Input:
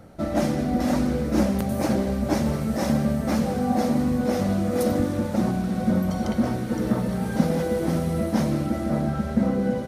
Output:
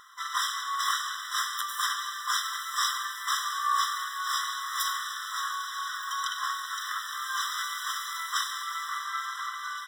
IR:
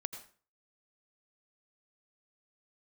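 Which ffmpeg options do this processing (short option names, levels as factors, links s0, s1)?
-filter_complex "[0:a]equalizer=f=100:t=o:w=0.67:g=-4,equalizer=f=630:t=o:w=0.67:g=4,equalizer=f=4000:t=o:w=0.67:g=10,asplit=3[s0][s1][s2];[s1]asetrate=29433,aresample=44100,atempo=1.49831,volume=0.708[s3];[s2]asetrate=66075,aresample=44100,atempo=0.66742,volume=0.631[s4];[s0][s3][s4]amix=inputs=3:normalize=0,afftfilt=real='re*eq(mod(floor(b*sr/1024/1000),2),1)':imag='im*eq(mod(floor(b*sr/1024/1000),2),1)':win_size=1024:overlap=0.75,volume=1.58"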